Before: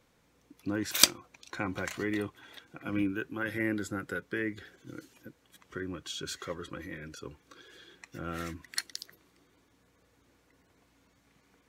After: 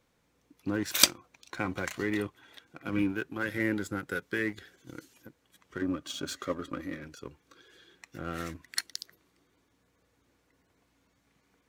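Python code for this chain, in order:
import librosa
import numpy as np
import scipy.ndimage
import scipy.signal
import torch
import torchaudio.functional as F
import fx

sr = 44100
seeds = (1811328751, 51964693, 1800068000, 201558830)

y = fx.high_shelf(x, sr, hz=3000.0, db=6.0, at=(4.11, 5.27))
y = fx.leveller(y, sr, passes=1)
y = fx.small_body(y, sr, hz=(270.0, 580.0, 1200.0), ring_ms=45, db=11, at=(5.81, 7.04))
y = F.gain(torch.from_numpy(y), -2.0).numpy()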